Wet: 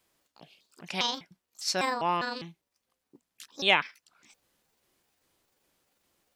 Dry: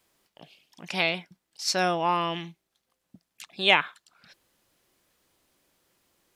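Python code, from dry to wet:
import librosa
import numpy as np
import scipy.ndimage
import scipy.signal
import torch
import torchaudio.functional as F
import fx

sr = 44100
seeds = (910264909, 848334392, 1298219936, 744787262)

y = fx.pitch_trill(x, sr, semitones=6.5, every_ms=201)
y = y * 10.0 ** (-3.0 / 20.0)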